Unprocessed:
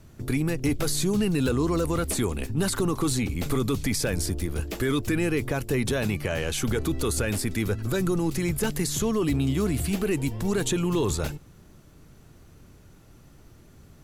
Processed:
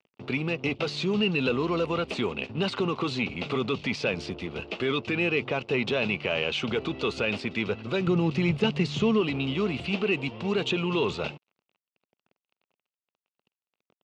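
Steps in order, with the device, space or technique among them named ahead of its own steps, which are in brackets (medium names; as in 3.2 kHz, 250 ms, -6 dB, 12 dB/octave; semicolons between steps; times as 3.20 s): blown loudspeaker (crossover distortion -43 dBFS; cabinet simulation 210–4100 Hz, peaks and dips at 300 Hz -8 dB, 1.7 kHz -9 dB, 2.7 kHz +10 dB); 8.07–9.21 s: peaking EQ 110 Hz +9 dB 2.2 oct; trim +2.5 dB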